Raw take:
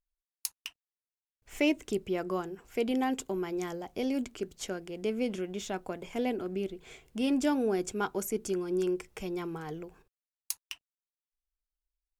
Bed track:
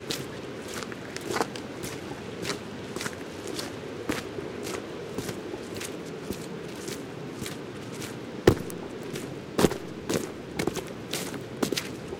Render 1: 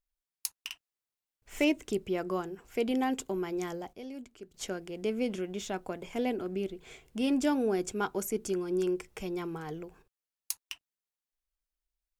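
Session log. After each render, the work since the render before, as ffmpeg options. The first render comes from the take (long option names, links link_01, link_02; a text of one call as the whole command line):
ffmpeg -i in.wav -filter_complex "[0:a]asettb=1/sr,asplit=3[link_01][link_02][link_03];[link_01]atrim=end=0.614[link_04];[link_02]atrim=start=0.61:end=1.65,asetpts=PTS-STARTPTS,afade=type=in:duration=0.004:curve=qsin,afade=type=out:start_time=1.036:duration=0.004:curve=qsin,asplit=2[link_05][link_06];[link_06]adelay=49,volume=-2dB[link_07];[link_05][link_07]amix=inputs=2:normalize=0,atrim=end_sample=45864[link_08];[link_03]atrim=start=1.646[link_09];[link_04][link_08]acrossfade=duration=0.004:curve1=hsin:curve2=qsin[link_10];[link_10][link_09]acrossfade=duration=0.004:curve1=qsin:curve2=hsin,asplit=3[link_11][link_12][link_13];[link_11]atrim=end=3.932[link_14];[link_12]atrim=start=3.928:end=4.542,asetpts=PTS-STARTPTS,volume=-11.5dB[link_15];[link_13]atrim=start=4.538[link_16];[link_14][link_15]acrossfade=duration=0.004:curve1=hsin:curve2=hsin[link_17];[link_17][link_16]acrossfade=duration=0.004:curve1=hsin:curve2=hsin" out.wav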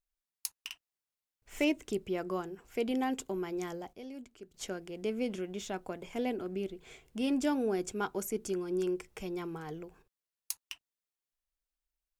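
ffmpeg -i in.wav -af "volume=-2.5dB" out.wav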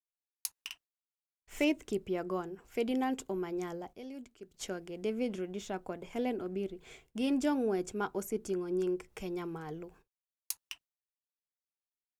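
ffmpeg -i in.wav -af "agate=range=-33dB:threshold=-55dB:ratio=3:detection=peak,adynamicequalizer=threshold=0.00251:dfrequency=1800:dqfactor=0.7:tfrequency=1800:tqfactor=0.7:attack=5:release=100:ratio=0.375:range=2.5:mode=cutabove:tftype=highshelf" out.wav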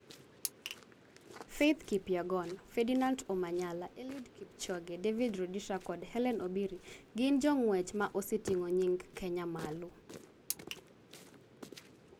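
ffmpeg -i in.wav -i bed.wav -filter_complex "[1:a]volume=-22.5dB[link_01];[0:a][link_01]amix=inputs=2:normalize=0" out.wav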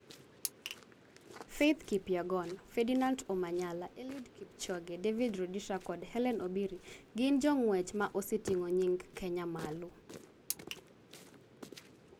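ffmpeg -i in.wav -af anull out.wav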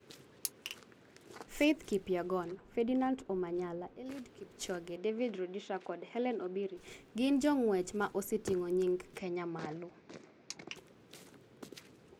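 ffmpeg -i in.wav -filter_complex "[0:a]asettb=1/sr,asplit=3[link_01][link_02][link_03];[link_01]atrim=end=2.444[link_04];[link_02]atrim=start=2.44:end=4.06,asetpts=PTS-STARTPTS,afade=type=in:duration=0.004:curve=qsin,afade=type=out:start_time=1.616:duration=0.004:curve=qsin,lowpass=frequency=1400:poles=1[link_05];[link_03]atrim=start=4.056[link_06];[link_04][link_05]acrossfade=duration=0.004:curve1=hsin:curve2=qsin[link_07];[link_07][link_06]acrossfade=duration=0.004:curve1=qsin:curve2=hsin,asettb=1/sr,asplit=3[link_08][link_09][link_10];[link_08]atrim=end=4.964[link_11];[link_09]atrim=start=4.96:end=6.77,asetpts=PTS-STARTPTS,afade=type=in:duration=0.004:curve=qsin,afade=type=out:start_time=1.806:duration=0.004:curve=qsin,highpass=240,lowpass=3800[link_12];[link_10]atrim=start=6.766[link_13];[link_11][link_12]acrossfade=duration=0.004:curve1=hsin:curve2=qsin[link_14];[link_14][link_13]acrossfade=duration=0.004:curve1=qsin:curve2=hsin,asettb=1/sr,asplit=3[link_15][link_16][link_17];[link_15]atrim=end=9.184[link_18];[link_16]atrim=start=9.18:end=10.76,asetpts=PTS-STARTPTS,afade=type=in:duration=0.004:curve=qsin,afade=type=out:start_time=1.576:duration=0.004:curve=qsin,highpass=120,equalizer=frequency=450:width_type=q:width=4:gain=-4,equalizer=frequency=650:width_type=q:width=4:gain=5,equalizer=frequency=2200:width_type=q:width=4:gain=5,equalizer=frequency=3100:width_type=q:width=4:gain=-5,lowpass=frequency=6000:width=0.5412,lowpass=frequency=6000:width=1.3066[link_19];[link_17]atrim=start=10.756[link_20];[link_18][link_19]acrossfade=duration=0.004:curve1=hsin:curve2=qsin[link_21];[link_21][link_20]acrossfade=duration=0.004:curve1=qsin:curve2=hsin" out.wav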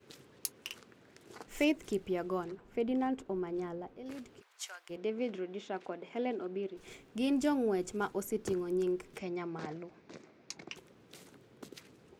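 ffmpeg -i in.wav -filter_complex "[0:a]asplit=3[link_01][link_02][link_03];[link_01]afade=type=out:start_time=4.4:duration=0.02[link_04];[link_02]highpass=frequency=880:width=0.5412,highpass=frequency=880:width=1.3066,afade=type=in:start_time=4.4:duration=0.02,afade=type=out:start_time=4.89:duration=0.02[link_05];[link_03]afade=type=in:start_time=4.89:duration=0.02[link_06];[link_04][link_05][link_06]amix=inputs=3:normalize=0" out.wav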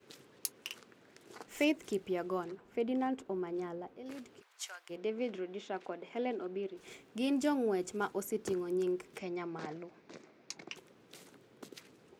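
ffmpeg -i in.wav -af "highpass=frequency=180:poles=1" out.wav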